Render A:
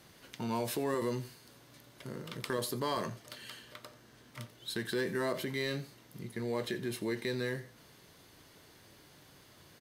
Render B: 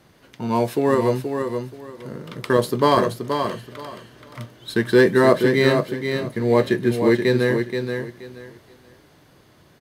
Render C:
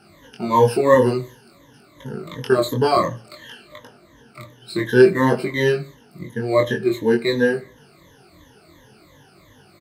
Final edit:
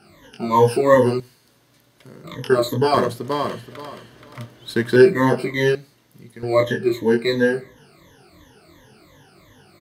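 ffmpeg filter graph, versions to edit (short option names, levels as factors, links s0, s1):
-filter_complex "[0:a]asplit=2[s0][s1];[2:a]asplit=4[s2][s3][s4][s5];[s2]atrim=end=1.202[s6];[s0]atrim=start=1.198:end=2.242[s7];[s3]atrim=start=2.238:end=2.942[s8];[1:a]atrim=start=2.938:end=4.962[s9];[s4]atrim=start=4.958:end=5.752[s10];[s1]atrim=start=5.748:end=6.432[s11];[s5]atrim=start=6.428[s12];[s6][s7]acrossfade=d=0.004:c1=hsin:c2=hsin[s13];[s13][s8]acrossfade=d=0.004:c1=hsin:c2=hsin[s14];[s14][s9]acrossfade=d=0.004:c1=hsin:c2=hsin[s15];[s15][s10]acrossfade=d=0.004:c1=hsin:c2=hsin[s16];[s16][s11]acrossfade=d=0.004:c1=hsin:c2=hsin[s17];[s17][s12]acrossfade=d=0.004:c1=hsin:c2=hsin"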